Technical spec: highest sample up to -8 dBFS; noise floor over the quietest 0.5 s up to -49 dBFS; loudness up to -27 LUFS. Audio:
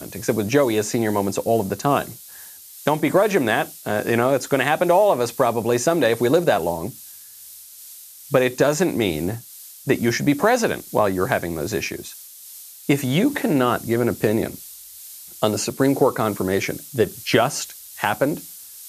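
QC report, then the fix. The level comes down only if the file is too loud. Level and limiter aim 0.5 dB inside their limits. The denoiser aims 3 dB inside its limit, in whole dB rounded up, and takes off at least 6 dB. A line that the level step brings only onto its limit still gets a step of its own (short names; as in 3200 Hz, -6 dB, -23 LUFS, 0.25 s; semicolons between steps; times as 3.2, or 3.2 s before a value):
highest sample -2.0 dBFS: fail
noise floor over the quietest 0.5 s -42 dBFS: fail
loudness -21.0 LUFS: fail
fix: denoiser 6 dB, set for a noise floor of -42 dBFS; gain -6.5 dB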